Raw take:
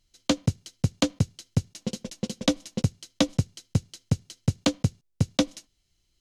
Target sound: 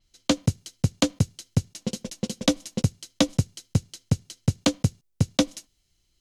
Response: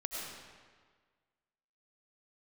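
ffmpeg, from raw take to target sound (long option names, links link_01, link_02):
-af "adynamicequalizer=threshold=0.00631:dfrequency=6800:dqfactor=0.7:tfrequency=6800:tqfactor=0.7:attack=5:release=100:ratio=0.375:range=3:mode=boostabove:tftype=highshelf,volume=1.5dB"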